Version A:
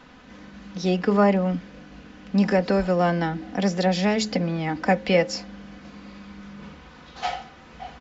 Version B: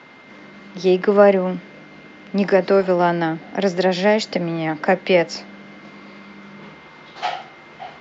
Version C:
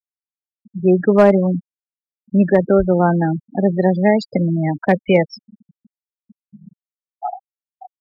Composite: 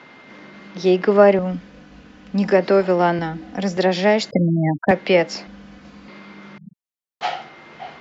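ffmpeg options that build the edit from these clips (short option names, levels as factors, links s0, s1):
-filter_complex "[0:a]asplit=3[s0][s1][s2];[2:a]asplit=2[s3][s4];[1:a]asplit=6[s5][s6][s7][s8][s9][s10];[s5]atrim=end=1.392[s11];[s0]atrim=start=1.388:end=2.512[s12];[s6]atrim=start=2.508:end=3.192[s13];[s1]atrim=start=3.188:end=3.772[s14];[s7]atrim=start=3.768:end=4.312[s15];[s3]atrim=start=4.308:end=4.912[s16];[s8]atrim=start=4.908:end=5.472[s17];[s2]atrim=start=5.468:end=6.082[s18];[s9]atrim=start=6.078:end=6.582[s19];[s4]atrim=start=6.578:end=7.212[s20];[s10]atrim=start=7.208[s21];[s11][s12]acrossfade=d=0.004:c1=hsin:c2=hsin[s22];[s22][s13]acrossfade=d=0.004:c1=hsin:c2=hsin[s23];[s23][s14]acrossfade=d=0.004:c1=hsin:c2=hsin[s24];[s24][s15]acrossfade=d=0.004:c1=hsin:c2=hsin[s25];[s25][s16]acrossfade=d=0.004:c1=hsin:c2=hsin[s26];[s26][s17]acrossfade=d=0.004:c1=hsin:c2=hsin[s27];[s27][s18]acrossfade=d=0.004:c1=hsin:c2=hsin[s28];[s28][s19]acrossfade=d=0.004:c1=hsin:c2=hsin[s29];[s29][s20]acrossfade=d=0.004:c1=hsin:c2=hsin[s30];[s30][s21]acrossfade=d=0.004:c1=hsin:c2=hsin"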